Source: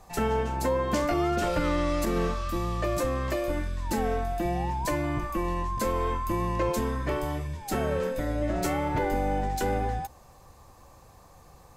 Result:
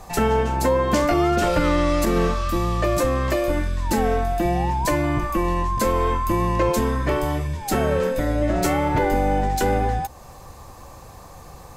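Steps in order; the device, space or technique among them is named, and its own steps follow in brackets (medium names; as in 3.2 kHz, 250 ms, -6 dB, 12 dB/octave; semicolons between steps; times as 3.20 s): parallel compression (in parallel at -2 dB: compression, threshold -41 dBFS, peak gain reduction 17 dB); on the sum: trim +6 dB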